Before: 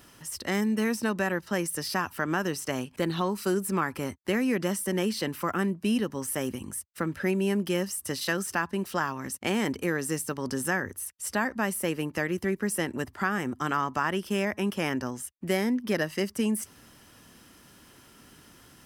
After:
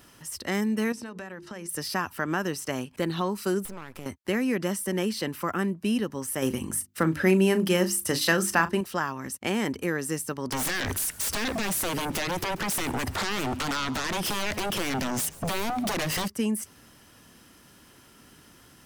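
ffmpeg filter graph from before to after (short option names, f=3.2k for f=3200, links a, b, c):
-filter_complex "[0:a]asettb=1/sr,asplit=3[a][b][c];[a]atrim=end=0.924[d];[b]atrim=start=0.92:end=1.69,asetpts=PTS-STARTPTS,afade=t=in:d=0.004:c=qsin,afade=t=out:st=0.766:d=0.004:c=qsin,bandreject=f=50:t=h:w=6,bandreject=f=100:t=h:w=6,bandreject=f=150:t=h:w=6,bandreject=f=200:t=h:w=6,bandreject=f=250:t=h:w=6,bandreject=f=300:t=h:w=6,bandreject=f=350:t=h:w=6,bandreject=f=400:t=h:w=6,bandreject=f=450:t=h:w=6,acompressor=threshold=-35dB:ratio=6:attack=3.2:release=140:knee=1:detection=peak,lowpass=9.5k[e];[c]atrim=start=1.686[f];[d][e]acrossfade=d=0.004:c1=hsin:c2=qsin[g];[g][f]acrossfade=d=0.004:c1=qsin:c2=hsin,asettb=1/sr,asplit=3[h][i][j];[h]atrim=end=3.654[k];[i]atrim=start=3.65:end=4.06,asetpts=PTS-STARTPTS,afade=t=in:d=0.004:c=qsin,afade=t=out:st=0.406:d=0.004:c=qsin,aeval=exprs='max(val(0),0)':c=same,acompressor=threshold=-33dB:ratio=10:attack=3.2:release=140:knee=1:detection=peak[l];[j]atrim=start=4.056[m];[k][l]acrossfade=d=0.004:c1=hsin:c2=qsin[n];[n][m]acrossfade=d=0.004:c1=qsin:c2=hsin,asettb=1/sr,asplit=3[o][p][q];[o]atrim=end=6.424[r];[p]atrim=start=6.42:end=8.81,asetpts=PTS-STARTPTS,afade=t=in:d=0.004:c=qsin,afade=t=out:st=2.386:d=0.004:c=qsin,bandreject=f=50:t=h:w=6,bandreject=f=100:t=h:w=6,bandreject=f=150:t=h:w=6,bandreject=f=200:t=h:w=6,bandreject=f=250:t=h:w=6,bandreject=f=300:t=h:w=6,bandreject=f=350:t=h:w=6,acontrast=52,asplit=2[s][t];[t]adelay=37,volume=-12.5dB[u];[s][u]amix=inputs=2:normalize=0,atrim=end_sample=105399[v];[q]atrim=start=8.806[w];[r][v]acrossfade=d=0.004:c1=hsin:c2=qsin[x];[x][w]acrossfade=d=0.004:c1=qsin:c2=hsin,asettb=1/sr,asplit=3[y][z][aa];[y]atrim=end=10.524[ab];[z]atrim=start=10.52:end=16.28,asetpts=PTS-STARTPTS,afade=t=in:d=0.004:c=qsin,afade=t=out:st=5.756:d=0.004:c=qsin,acompressor=threshold=-38dB:ratio=6:attack=3.2:release=140:knee=1:detection=peak,aeval=exprs='0.0562*sin(PI/2*7.94*val(0)/0.0562)':c=same,asplit=6[ac][ad][ae][af][ag][ah];[ad]adelay=137,afreqshift=-84,volume=-20dB[ai];[ae]adelay=274,afreqshift=-168,volume=-24.3dB[aj];[af]adelay=411,afreqshift=-252,volume=-28.6dB[ak];[ag]adelay=548,afreqshift=-336,volume=-32.9dB[al];[ah]adelay=685,afreqshift=-420,volume=-37.2dB[am];[ac][ai][aj][ak][al][am]amix=inputs=6:normalize=0,atrim=end_sample=254016[an];[aa]atrim=start=16.276[ao];[ab][an]acrossfade=d=0.004:c1=hsin:c2=qsin[ap];[ap][ao]acrossfade=d=0.004:c1=qsin:c2=hsin"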